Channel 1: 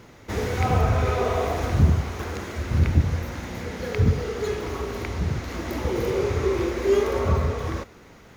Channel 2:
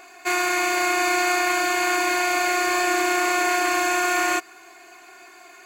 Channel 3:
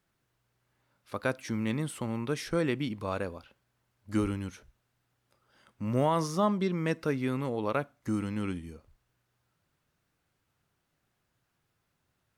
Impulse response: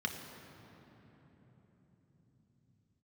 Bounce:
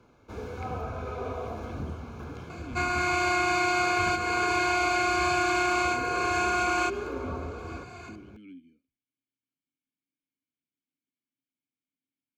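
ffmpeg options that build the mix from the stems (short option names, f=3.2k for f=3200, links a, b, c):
-filter_complex "[0:a]aemphasis=mode=reproduction:type=cd,volume=-11.5dB,asplit=2[a][b];[b]volume=-15dB[c];[1:a]lowpass=5.7k,adelay=2500,volume=2dB,asplit=2[d][e];[e]volume=-18.5dB[f];[2:a]asplit=3[g][h][i];[g]bandpass=f=270:t=q:w=8,volume=0dB[j];[h]bandpass=f=2.29k:t=q:w=8,volume=-6dB[k];[i]bandpass=f=3.01k:t=q:w=8,volume=-9dB[l];[j][k][l]amix=inputs=3:normalize=0,volume=-5.5dB,asplit=2[m][n];[n]apad=whole_len=359617[o];[d][o]sidechaincompress=threshold=-48dB:ratio=8:attack=41:release=643[p];[3:a]atrim=start_sample=2205[q];[c][f]amix=inputs=2:normalize=0[r];[r][q]afir=irnorm=-1:irlink=0[s];[a][p][m][s]amix=inputs=4:normalize=0,acrossover=split=200|770[t][u][v];[t]acompressor=threshold=-36dB:ratio=4[w];[u]acompressor=threshold=-31dB:ratio=4[x];[v]acompressor=threshold=-25dB:ratio=4[y];[w][x][y]amix=inputs=3:normalize=0,asuperstop=centerf=1900:order=12:qfactor=5.4"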